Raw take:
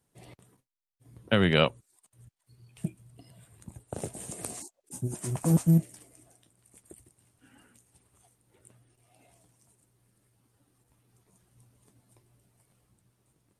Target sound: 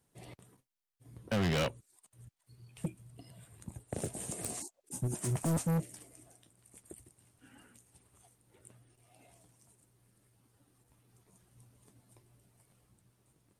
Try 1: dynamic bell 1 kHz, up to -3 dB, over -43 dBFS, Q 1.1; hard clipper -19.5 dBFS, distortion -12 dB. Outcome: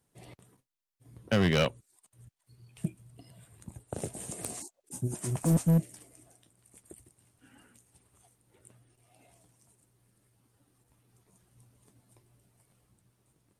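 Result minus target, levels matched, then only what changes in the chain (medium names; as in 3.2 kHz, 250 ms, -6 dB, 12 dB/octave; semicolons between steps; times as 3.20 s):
hard clipper: distortion -7 dB
change: hard clipper -28 dBFS, distortion -4 dB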